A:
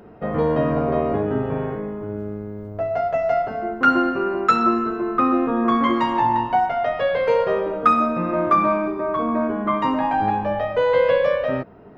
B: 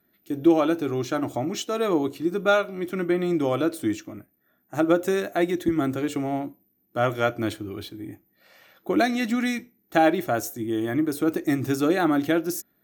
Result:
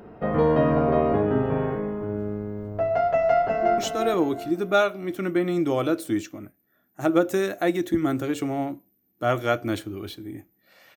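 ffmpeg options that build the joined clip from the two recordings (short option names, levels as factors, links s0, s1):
-filter_complex "[0:a]apad=whole_dur=10.96,atrim=end=10.96,atrim=end=3.782[s0];[1:a]atrim=start=1.518:end=8.7[s1];[s0][s1]acrossfade=d=0.004:c1=hsin:c2=hsin,asplit=2[s2][s3];[s3]afade=t=in:st=3.12:d=0.01,afade=t=out:st=3.78:d=0.01,aecho=0:1:360|720|1080|1440:0.630957|0.220835|0.0772923|0.0270523[s4];[s2][s4]amix=inputs=2:normalize=0"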